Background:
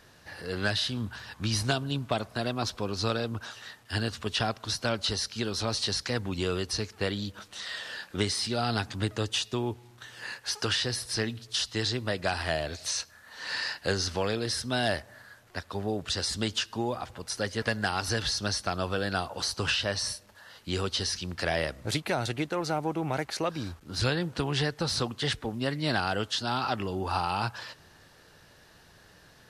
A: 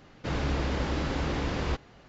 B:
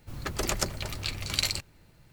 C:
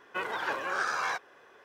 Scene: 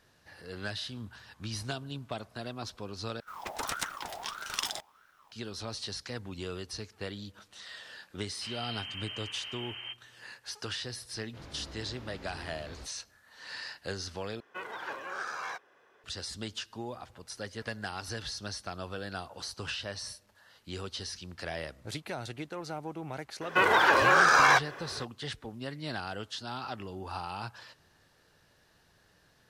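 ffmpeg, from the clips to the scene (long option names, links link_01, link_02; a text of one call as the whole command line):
ffmpeg -i bed.wav -i cue0.wav -i cue1.wav -i cue2.wav -filter_complex "[1:a]asplit=2[link_01][link_02];[3:a]asplit=2[link_03][link_04];[0:a]volume=-9dB[link_05];[2:a]aeval=exprs='val(0)*sin(2*PI*1100*n/s+1100*0.35/1.6*sin(2*PI*1.6*n/s))':channel_layout=same[link_06];[link_01]lowpass=frequency=2700:width_type=q:width=0.5098,lowpass=frequency=2700:width_type=q:width=0.6013,lowpass=frequency=2700:width_type=q:width=0.9,lowpass=frequency=2700:width_type=q:width=2.563,afreqshift=-3200[link_07];[link_02]flanger=delay=18.5:depth=2.4:speed=1.7[link_08];[link_04]alimiter=level_in=22dB:limit=-1dB:release=50:level=0:latency=1[link_09];[link_05]asplit=3[link_10][link_11][link_12];[link_10]atrim=end=3.204[link_13];[link_06]atrim=end=2.12,asetpts=PTS-STARTPTS,volume=-3dB[link_14];[link_11]atrim=start=5.316:end=14.404[link_15];[link_03]atrim=end=1.64,asetpts=PTS-STARTPTS,volume=-7dB[link_16];[link_12]atrim=start=16.036[link_17];[link_07]atrim=end=2.08,asetpts=PTS-STARTPTS,volume=-13dB,afade=type=in:duration=0.004:curve=hsin,afade=type=out:start_time=2.076:duration=0.004:curve=hsin,adelay=8170[link_18];[link_08]atrim=end=2.08,asetpts=PTS-STARTPTS,volume=-15dB,afade=type=in:duration=0.004:curve=hsin,afade=type=out:start_time=2.076:duration=0.004:curve=hsin,adelay=11090[link_19];[link_09]atrim=end=1.64,asetpts=PTS-STARTPTS,volume=-10dB,afade=type=in:duration=0.004:curve=hsin,afade=type=out:start_time=1.636:duration=0.004:curve=hsin,adelay=23410[link_20];[link_13][link_14]acrossfade=duration=0.004:curve1=hsin:curve2=hsin[link_21];[link_21][link_15]acrossfade=duration=0.004:curve1=hsin:curve2=hsin[link_22];[link_22][link_16]acrossfade=duration=0.004:curve1=hsin:curve2=hsin[link_23];[link_23][link_17]acrossfade=duration=0.004:curve1=hsin:curve2=hsin[link_24];[link_24][link_18][link_19][link_20]amix=inputs=4:normalize=0" out.wav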